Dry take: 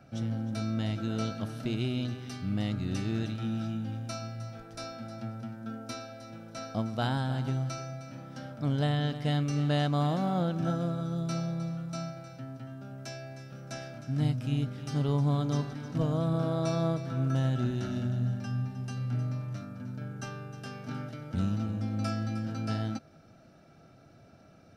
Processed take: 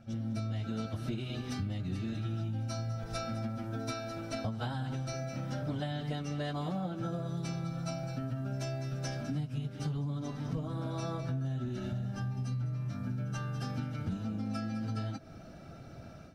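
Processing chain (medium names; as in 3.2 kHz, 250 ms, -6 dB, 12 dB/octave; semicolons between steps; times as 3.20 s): bass shelf 74 Hz +10.5 dB; reverse echo 129 ms -22 dB; level rider gain up to 13 dB; plain phase-vocoder stretch 0.66×; compression 10:1, threshold -29 dBFS, peak gain reduction 18 dB; trim -3.5 dB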